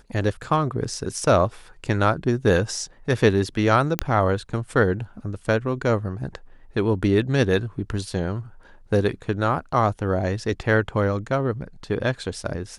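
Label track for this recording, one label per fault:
3.990000	3.990000	pop -4 dBFS

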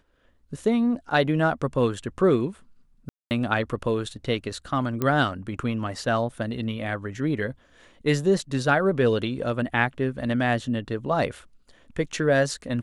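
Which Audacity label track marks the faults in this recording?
3.090000	3.310000	gap 0.219 s
5.020000	5.020000	pop -12 dBFS

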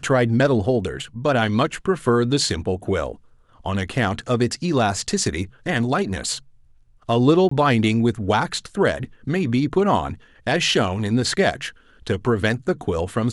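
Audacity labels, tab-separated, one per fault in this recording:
7.490000	7.510000	gap 24 ms

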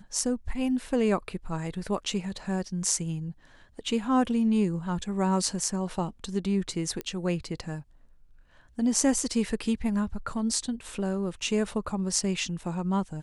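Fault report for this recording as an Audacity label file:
7.010000	7.010000	pop -18 dBFS

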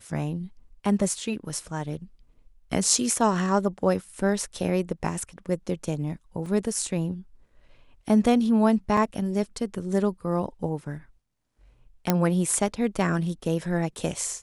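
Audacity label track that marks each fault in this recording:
6.460000	6.460000	gap 3 ms
8.970000	8.970000	gap 3.9 ms
12.100000	12.100000	pop -6 dBFS

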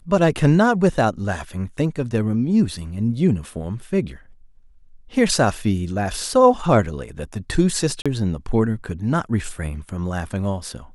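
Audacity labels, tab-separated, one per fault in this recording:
8.020000	8.060000	gap 36 ms

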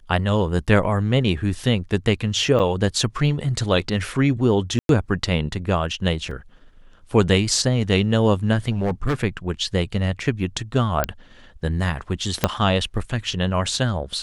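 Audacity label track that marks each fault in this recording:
2.590000	2.600000	gap 7.6 ms
4.790000	4.890000	gap 0.102 s
6.310000	6.310000	gap 3.9 ms
8.710000	9.150000	clipped -17.5 dBFS
11.040000	11.040000	pop -4 dBFS
12.440000	12.440000	pop -1 dBFS

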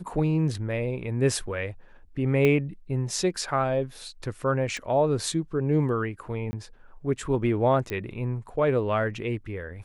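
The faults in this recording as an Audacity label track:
2.450000	2.450000	pop -12 dBFS
4.770000	4.770000	pop -22 dBFS
6.510000	6.530000	gap 20 ms
7.900000	7.900000	pop -18 dBFS

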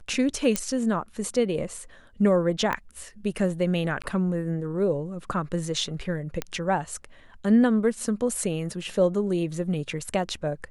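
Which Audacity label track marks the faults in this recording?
0.560000	0.560000	pop -8 dBFS
2.730000	2.730000	pop -14 dBFS
4.020000	4.040000	gap 16 ms
6.420000	6.420000	pop -13 dBFS

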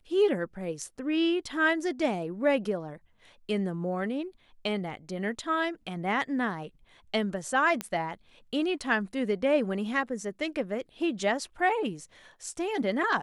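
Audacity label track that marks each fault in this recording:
7.810000	7.810000	pop -15 dBFS

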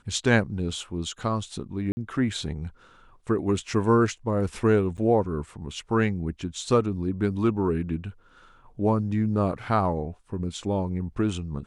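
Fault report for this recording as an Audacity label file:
1.920000	1.970000	gap 50 ms
4.970000	4.980000	gap 9.1 ms

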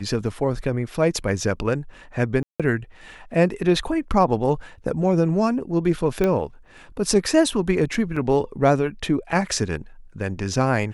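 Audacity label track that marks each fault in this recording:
2.430000	2.600000	gap 0.166 s
6.240000	6.240000	pop -10 dBFS
8.160000	8.160000	gap 4.9 ms

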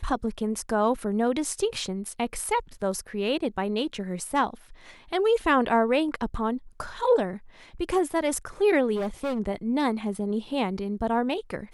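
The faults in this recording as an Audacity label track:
8.950000	9.400000	clipped -25 dBFS

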